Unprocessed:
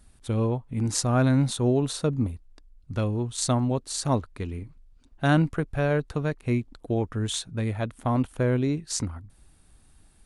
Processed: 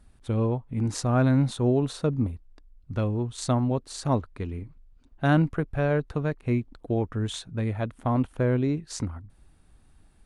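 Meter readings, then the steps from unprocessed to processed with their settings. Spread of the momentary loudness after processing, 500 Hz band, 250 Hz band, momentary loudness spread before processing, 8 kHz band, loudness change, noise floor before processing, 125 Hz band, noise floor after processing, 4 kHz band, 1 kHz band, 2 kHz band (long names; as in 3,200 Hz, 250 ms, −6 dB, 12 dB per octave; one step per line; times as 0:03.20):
11 LU, 0.0 dB, 0.0 dB, 10 LU, −8.0 dB, −0.5 dB, −58 dBFS, 0.0 dB, −58 dBFS, −5.0 dB, −0.5 dB, −1.5 dB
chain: high-shelf EQ 4,100 Hz −10.5 dB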